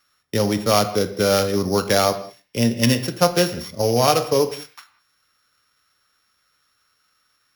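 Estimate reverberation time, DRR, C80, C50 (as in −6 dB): non-exponential decay, 10.5 dB, 15.0 dB, 13.0 dB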